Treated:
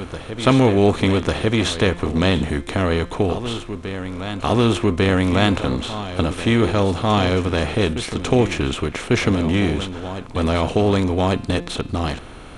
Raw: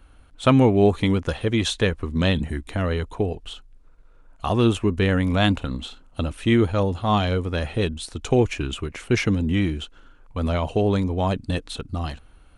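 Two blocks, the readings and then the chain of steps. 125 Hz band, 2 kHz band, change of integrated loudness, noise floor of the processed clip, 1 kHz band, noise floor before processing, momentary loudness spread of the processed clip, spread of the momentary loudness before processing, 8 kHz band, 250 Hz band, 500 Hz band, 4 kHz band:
+2.5 dB, +4.5 dB, +3.0 dB, −36 dBFS, +4.5 dB, −51 dBFS, 10 LU, 13 LU, +5.0 dB, +3.0 dB, +4.0 dB, +4.5 dB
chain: compressor on every frequency bin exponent 0.6
hum removal 174 Hz, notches 29
on a send: backwards echo 1,147 ms −11 dB

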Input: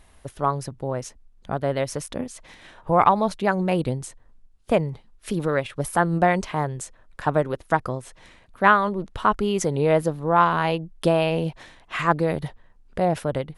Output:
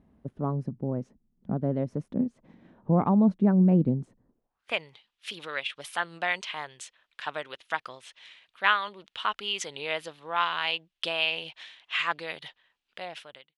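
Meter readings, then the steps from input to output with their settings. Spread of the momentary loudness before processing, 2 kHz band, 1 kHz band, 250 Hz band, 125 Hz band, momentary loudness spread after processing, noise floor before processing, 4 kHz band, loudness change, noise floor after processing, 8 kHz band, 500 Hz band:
14 LU, −3.0 dB, −10.5 dB, −1.0 dB, −3.5 dB, 21 LU, −55 dBFS, +5.0 dB, −5.0 dB, −83 dBFS, −9.0 dB, −11.5 dB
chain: fade-out on the ending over 0.76 s
band-pass filter sweep 210 Hz → 3,100 Hz, 0:04.24–0:04.76
level +7 dB

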